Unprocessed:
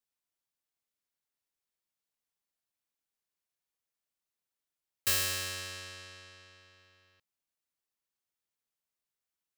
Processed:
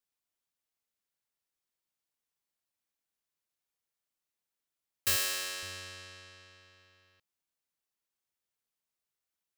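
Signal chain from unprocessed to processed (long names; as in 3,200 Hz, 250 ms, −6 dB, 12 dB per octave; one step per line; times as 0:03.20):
0:05.16–0:05.63: high-pass filter 330 Hz 12 dB per octave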